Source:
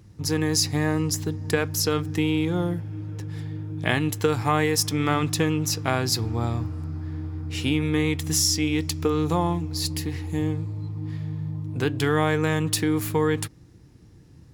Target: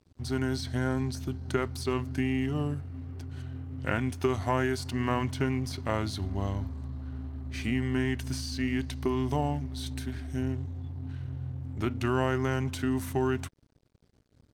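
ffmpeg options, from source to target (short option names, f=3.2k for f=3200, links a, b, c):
-filter_complex "[0:a]acrossover=split=2800[a][b];[b]acompressor=threshold=-33dB:ratio=4:attack=1:release=60[c];[a][c]amix=inputs=2:normalize=0,aeval=exprs='sgn(val(0))*max(abs(val(0))-0.00355,0)':c=same,asetrate=37084,aresample=44100,atempo=1.18921,volume=-5dB"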